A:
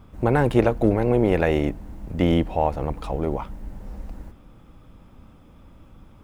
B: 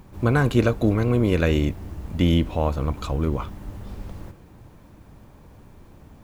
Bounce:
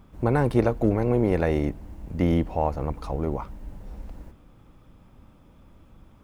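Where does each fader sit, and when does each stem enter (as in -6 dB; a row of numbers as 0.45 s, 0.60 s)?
-4.5 dB, -14.0 dB; 0.00 s, 0.00 s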